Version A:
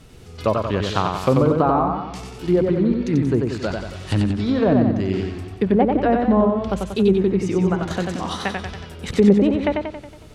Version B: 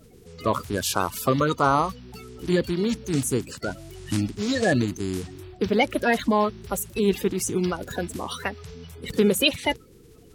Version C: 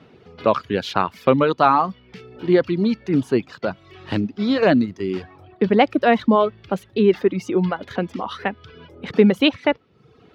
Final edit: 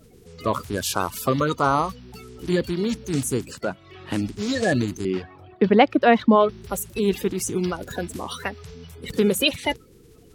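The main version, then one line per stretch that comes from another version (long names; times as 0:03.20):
B
0:03.66–0:04.16: punch in from C, crossfade 0.24 s
0:05.05–0:06.49: punch in from C
not used: A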